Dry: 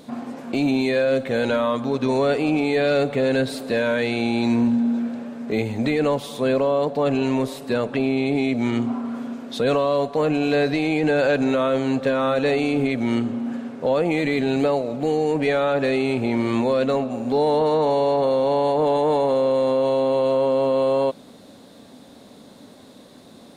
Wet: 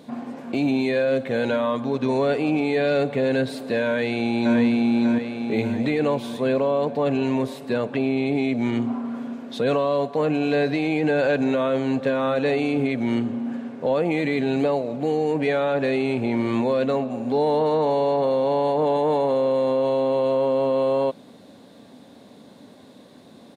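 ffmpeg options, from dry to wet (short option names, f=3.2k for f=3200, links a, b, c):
-filter_complex "[0:a]asplit=2[a][b];[b]afade=t=in:st=3.86:d=0.01,afade=t=out:st=4.59:d=0.01,aecho=0:1:590|1180|1770|2360|2950|3540|4130:0.707946|0.353973|0.176986|0.0884932|0.0442466|0.0221233|0.0110617[c];[a][c]amix=inputs=2:normalize=0,highpass=84,bass=f=250:g=1,treble=f=4k:g=-5,bandreject=f=1.3k:w=16,volume=-1.5dB"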